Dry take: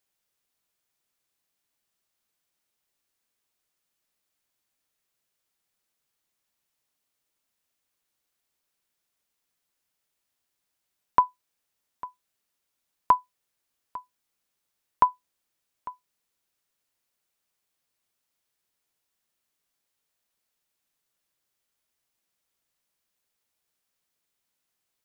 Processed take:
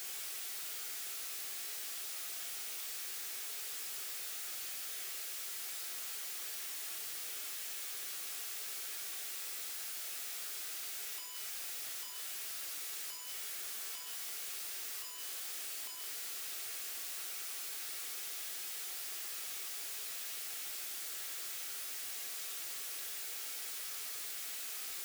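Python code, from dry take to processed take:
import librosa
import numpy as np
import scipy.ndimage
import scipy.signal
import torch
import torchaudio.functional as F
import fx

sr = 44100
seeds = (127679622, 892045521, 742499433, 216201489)

y = np.sign(x) * np.sqrt(np.mean(np.square(x)))
y = scipy.signal.sosfilt(scipy.signal.butter(4, 320.0, 'highpass', fs=sr, output='sos'), y)
y = fx.peak_eq(y, sr, hz=570.0, db=-7.0, octaves=2.2)
y = fx.notch(y, sr, hz=990.0, q=7.1)
y = fx.rev_fdn(y, sr, rt60_s=1.3, lf_ratio=0.75, hf_ratio=0.8, size_ms=42.0, drr_db=1.0)
y = fx.env_flatten(y, sr, amount_pct=50)
y = y * 10.0 ** (-5.5 / 20.0)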